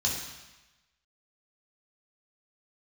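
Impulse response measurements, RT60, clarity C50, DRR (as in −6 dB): 1.1 s, 2.5 dB, −4.0 dB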